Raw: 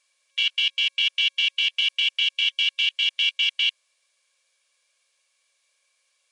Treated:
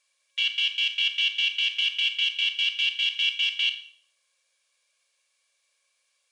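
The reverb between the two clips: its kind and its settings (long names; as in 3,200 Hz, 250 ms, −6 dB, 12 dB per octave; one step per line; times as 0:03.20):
four-comb reverb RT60 0.52 s, combs from 28 ms, DRR 8 dB
level −3 dB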